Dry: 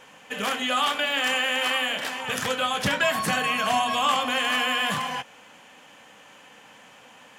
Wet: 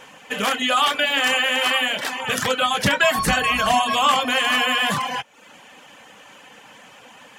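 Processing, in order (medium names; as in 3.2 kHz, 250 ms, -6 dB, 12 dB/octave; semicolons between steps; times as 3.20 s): 3.18–3.74 s: octave divider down 2 oct, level -4 dB; reverb removal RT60 0.61 s; trim +6 dB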